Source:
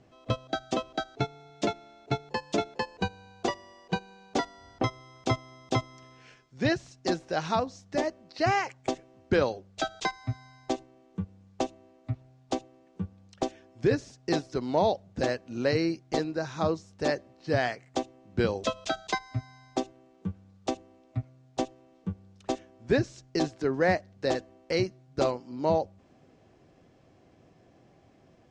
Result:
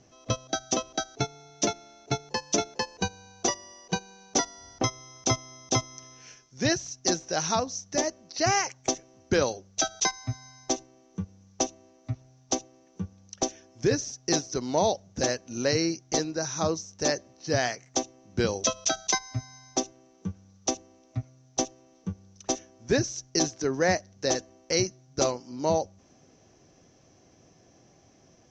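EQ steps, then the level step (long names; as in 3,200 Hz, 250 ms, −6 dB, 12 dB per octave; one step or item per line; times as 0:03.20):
low-pass with resonance 6,000 Hz, resonance Q 13
0.0 dB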